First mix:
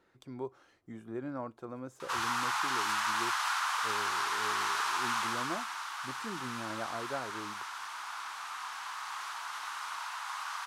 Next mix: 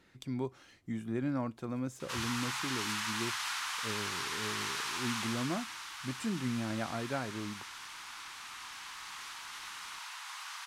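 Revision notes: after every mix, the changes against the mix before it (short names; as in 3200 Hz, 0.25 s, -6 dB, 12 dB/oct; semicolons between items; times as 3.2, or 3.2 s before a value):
speech +9.5 dB; master: add band shelf 710 Hz -9 dB 2.5 oct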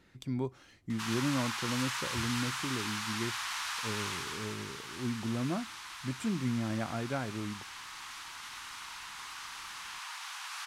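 background: entry -1.10 s; master: add low shelf 170 Hz +6 dB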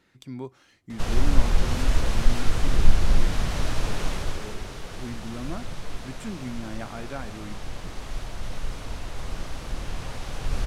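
background: remove steep high-pass 920 Hz 48 dB/oct; master: add low shelf 170 Hz -6 dB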